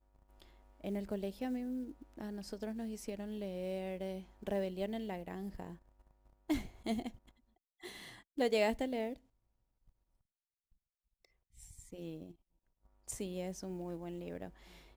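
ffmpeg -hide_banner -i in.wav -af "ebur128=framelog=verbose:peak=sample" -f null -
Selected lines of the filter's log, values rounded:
Integrated loudness:
  I:         -40.5 LUFS
  Threshold: -51.3 LUFS
Loudness range:
  LRA:        13.6 LU
  Threshold: -62.0 LUFS
  LRA low:   -52.4 LUFS
  LRA high:  -38.8 LUFS
Sample peak:
  Peak:      -19.4 dBFS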